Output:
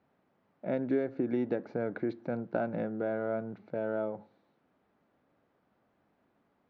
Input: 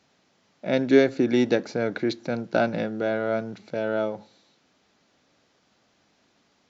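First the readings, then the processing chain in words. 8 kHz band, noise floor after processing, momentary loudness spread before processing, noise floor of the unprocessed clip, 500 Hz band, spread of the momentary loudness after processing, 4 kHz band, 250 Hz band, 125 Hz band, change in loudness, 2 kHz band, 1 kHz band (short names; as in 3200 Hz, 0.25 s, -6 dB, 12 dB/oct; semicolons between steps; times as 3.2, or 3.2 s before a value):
n/a, -74 dBFS, 11 LU, -67 dBFS, -9.0 dB, 7 LU, under -25 dB, -9.0 dB, -7.5 dB, -9.5 dB, -13.5 dB, -9.0 dB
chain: LPF 1400 Hz 12 dB/oct; compressor 3:1, threshold -23 dBFS, peak gain reduction 9 dB; gain -5 dB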